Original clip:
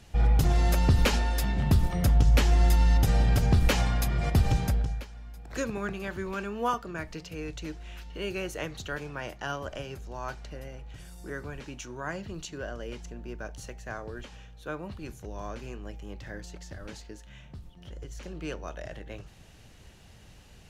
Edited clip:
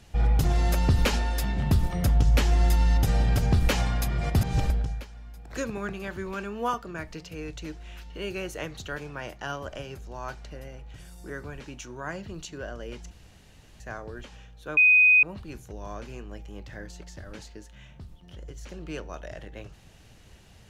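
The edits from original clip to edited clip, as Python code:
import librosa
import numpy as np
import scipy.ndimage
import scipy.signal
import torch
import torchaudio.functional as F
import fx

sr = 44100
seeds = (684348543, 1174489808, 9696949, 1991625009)

y = fx.edit(x, sr, fx.reverse_span(start_s=4.41, length_s=0.29),
    fx.room_tone_fill(start_s=13.11, length_s=0.69),
    fx.insert_tone(at_s=14.77, length_s=0.46, hz=2500.0, db=-14.0), tone=tone)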